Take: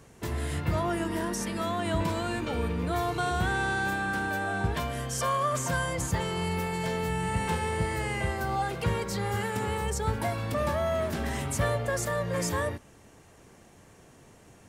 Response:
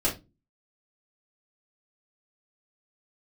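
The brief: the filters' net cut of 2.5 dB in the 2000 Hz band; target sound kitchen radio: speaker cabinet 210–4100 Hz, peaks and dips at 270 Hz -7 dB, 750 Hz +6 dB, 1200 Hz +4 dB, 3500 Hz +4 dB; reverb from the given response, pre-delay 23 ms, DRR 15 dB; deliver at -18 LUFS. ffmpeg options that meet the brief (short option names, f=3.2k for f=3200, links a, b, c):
-filter_complex "[0:a]equalizer=f=2k:t=o:g=-4.5,asplit=2[a][b];[1:a]atrim=start_sample=2205,adelay=23[c];[b][c]afir=irnorm=-1:irlink=0,volume=-24.5dB[d];[a][d]amix=inputs=2:normalize=0,highpass=210,equalizer=f=270:t=q:w=4:g=-7,equalizer=f=750:t=q:w=4:g=6,equalizer=f=1.2k:t=q:w=4:g=4,equalizer=f=3.5k:t=q:w=4:g=4,lowpass=f=4.1k:w=0.5412,lowpass=f=4.1k:w=1.3066,volume=12dB"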